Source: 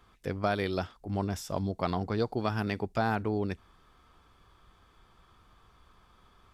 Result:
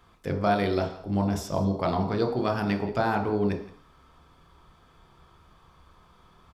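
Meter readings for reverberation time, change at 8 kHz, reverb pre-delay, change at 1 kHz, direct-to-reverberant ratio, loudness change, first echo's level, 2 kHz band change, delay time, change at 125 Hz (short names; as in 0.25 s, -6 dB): 0.55 s, n/a, 22 ms, +5.0 dB, 3.0 dB, +5.0 dB, -19.0 dB, +2.5 dB, 0.17 s, +4.0 dB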